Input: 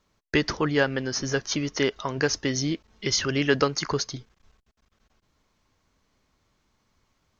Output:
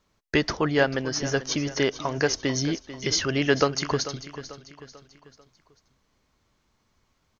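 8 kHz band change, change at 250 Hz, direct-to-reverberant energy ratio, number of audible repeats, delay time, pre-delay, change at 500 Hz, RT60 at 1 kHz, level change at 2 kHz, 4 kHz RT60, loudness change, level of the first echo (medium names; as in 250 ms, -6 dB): no reading, +0.5 dB, no reverb, 3, 442 ms, no reverb, +1.0 dB, no reverb, +0.5 dB, no reverb, +0.5 dB, -14.0 dB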